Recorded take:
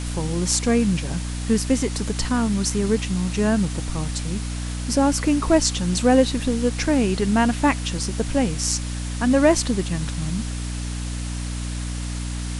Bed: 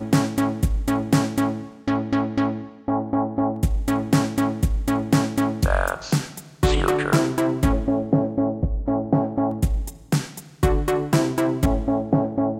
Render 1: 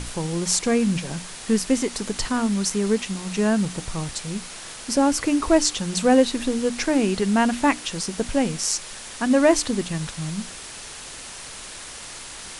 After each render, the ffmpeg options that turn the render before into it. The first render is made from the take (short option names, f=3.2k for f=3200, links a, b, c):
-af "bandreject=f=60:t=h:w=6,bandreject=f=120:t=h:w=6,bandreject=f=180:t=h:w=6,bandreject=f=240:t=h:w=6,bandreject=f=300:t=h:w=6"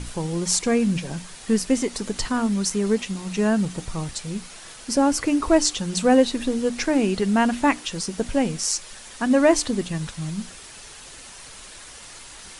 -af "afftdn=nr=6:nf=-38"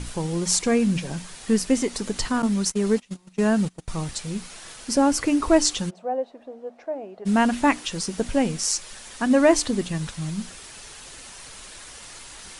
-filter_complex "[0:a]asettb=1/sr,asplit=3[a][b][c];[a]atrim=end=2.424[d];[b]atrim=start=2.42:end=3.88,asetpts=PTS-STARTPTS,afade=t=in:d=0.004:c=qsin,afade=t=out:st=1.456:d=0.004:c=qsin,agate=range=-24dB:threshold=-27dB:ratio=16:release=100:detection=peak[e];[c]atrim=start=3.876[f];[d][e]acrossfade=d=0.004:c1=hsin:c2=qsin[g];[g][f]acrossfade=d=0.004:c1=qsin:c2=hsin,asplit=3[h][i][j];[h]afade=t=out:st=5.89:d=0.02[k];[i]bandpass=f=660:t=q:w=5.3,afade=t=in:st=5.89:d=0.02,afade=t=out:st=7.25:d=0.02[l];[j]afade=t=in:st=7.25:d=0.02[m];[k][l][m]amix=inputs=3:normalize=0"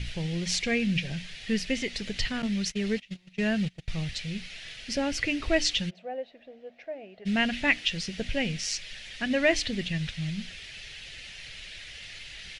-af "firequalizer=gain_entry='entry(130,0);entry(270,-11);entry(640,-7);entry(1000,-19);entry(1900,4);entry(2800,6);entry(8500,-18)':delay=0.05:min_phase=1"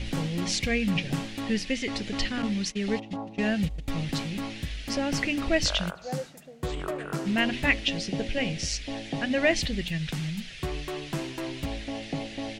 -filter_complex "[1:a]volume=-13.5dB[a];[0:a][a]amix=inputs=2:normalize=0"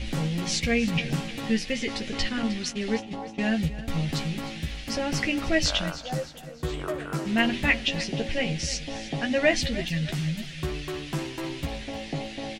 -filter_complex "[0:a]asplit=2[a][b];[b]adelay=13,volume=-5.5dB[c];[a][c]amix=inputs=2:normalize=0,aecho=1:1:308|616|924|1232:0.178|0.0747|0.0314|0.0132"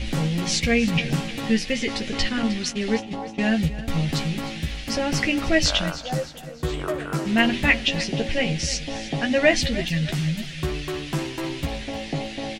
-af "volume=4dB"